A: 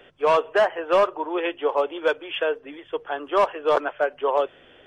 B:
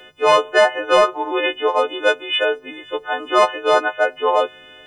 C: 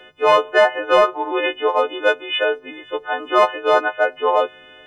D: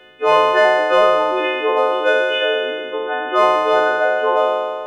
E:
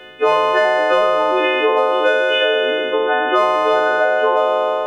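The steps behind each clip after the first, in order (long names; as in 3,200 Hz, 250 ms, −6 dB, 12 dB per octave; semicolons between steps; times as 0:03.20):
every partial snapped to a pitch grid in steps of 3 semitones; level +4.5 dB
bass and treble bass −2 dB, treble −10 dB
peak hold with a decay on every bin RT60 1.89 s; level −2 dB
downward compressor, threshold −19 dBFS, peak gain reduction 10 dB; level +7 dB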